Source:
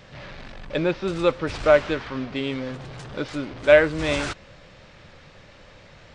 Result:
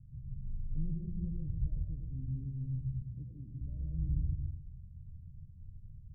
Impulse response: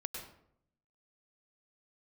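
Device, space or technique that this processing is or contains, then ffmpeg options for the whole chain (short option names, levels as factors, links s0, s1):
club heard from the street: -filter_complex "[0:a]alimiter=limit=0.211:level=0:latency=1:release=315,lowpass=f=130:w=0.5412,lowpass=f=130:w=1.3066[s0];[1:a]atrim=start_sample=2205[s1];[s0][s1]afir=irnorm=-1:irlink=0,asettb=1/sr,asplit=3[s2][s3][s4];[s2]atrim=end=3.024[s5];[s3]atrim=start=3.02:end=3.61,asetpts=PTS-STARTPTS,afade=t=in:d=0.004:c=qsin,afade=t=out:st=0.586:d=0.004:c=qsin,highpass=f=130:p=1[s6];[s4]atrim=start=3.606[s7];[s5][s6]acrossfade=d=0.004:c1=hsin:c2=qsin[s8];[s8][s7]acrossfade=d=0.004:c1=qsin:c2=hsin,volume=1.5"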